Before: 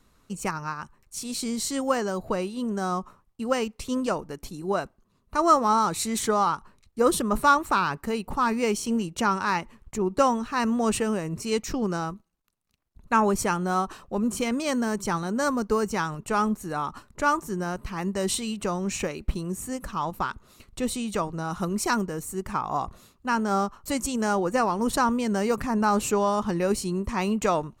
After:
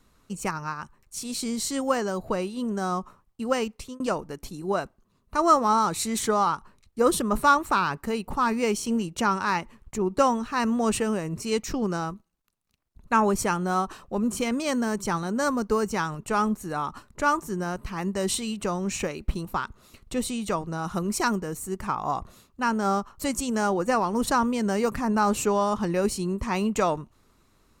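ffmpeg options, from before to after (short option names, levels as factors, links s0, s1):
-filter_complex "[0:a]asplit=3[s0][s1][s2];[s0]atrim=end=4,asetpts=PTS-STARTPTS,afade=t=out:st=3.74:d=0.26[s3];[s1]atrim=start=4:end=19.452,asetpts=PTS-STARTPTS,afade=t=in:d=0.004:c=hsin[s4];[s2]atrim=start=20.108[s5];[s3][s4]concat=n=2:v=0:a=1[s6];[s6][s5]acrossfade=d=0.004:c1=hsin:c2=hsin"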